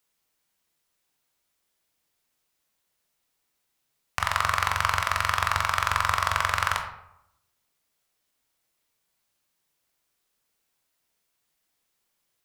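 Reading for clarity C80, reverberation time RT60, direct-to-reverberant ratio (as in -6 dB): 10.0 dB, 0.80 s, 4.0 dB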